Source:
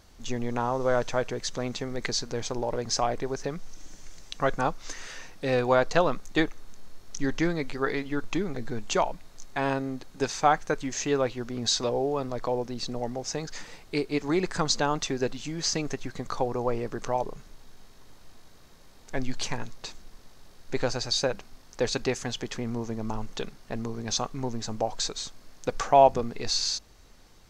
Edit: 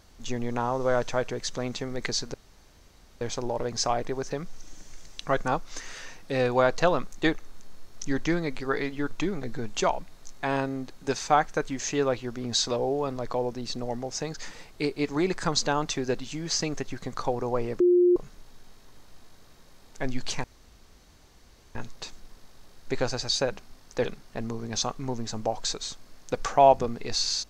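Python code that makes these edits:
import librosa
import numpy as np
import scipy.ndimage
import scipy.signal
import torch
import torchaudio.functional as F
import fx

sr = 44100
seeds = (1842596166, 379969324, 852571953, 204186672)

y = fx.edit(x, sr, fx.insert_room_tone(at_s=2.34, length_s=0.87),
    fx.bleep(start_s=16.93, length_s=0.36, hz=355.0, db=-16.0),
    fx.insert_room_tone(at_s=19.57, length_s=1.31),
    fx.cut(start_s=21.87, length_s=1.53), tone=tone)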